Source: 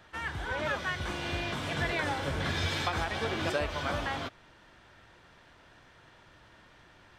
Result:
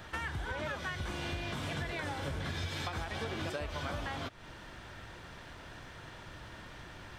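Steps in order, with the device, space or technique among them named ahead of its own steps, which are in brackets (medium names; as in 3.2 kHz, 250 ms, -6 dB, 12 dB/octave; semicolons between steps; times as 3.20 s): ASMR close-microphone chain (bass shelf 200 Hz +5.5 dB; compression 6:1, threshold -43 dBFS, peak gain reduction 18 dB; treble shelf 7.7 kHz +5.5 dB); trim +7 dB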